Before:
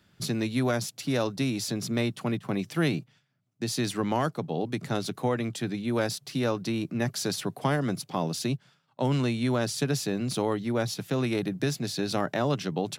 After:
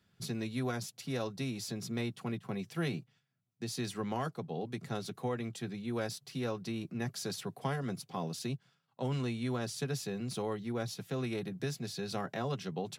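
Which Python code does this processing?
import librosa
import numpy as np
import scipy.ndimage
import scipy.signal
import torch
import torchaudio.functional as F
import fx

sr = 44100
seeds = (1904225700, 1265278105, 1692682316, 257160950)

y = fx.notch_comb(x, sr, f0_hz=300.0)
y = y * 10.0 ** (-7.5 / 20.0)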